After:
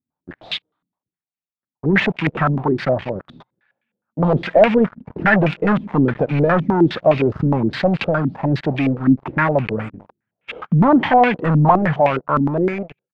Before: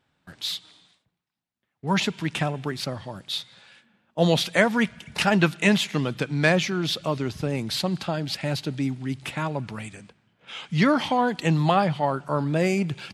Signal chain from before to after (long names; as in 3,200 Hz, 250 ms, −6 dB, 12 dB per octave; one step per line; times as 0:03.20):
fade-out on the ending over 1.41 s
leveller curve on the samples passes 5
low-pass on a step sequencer 9.7 Hz 250–2,500 Hz
level −8.5 dB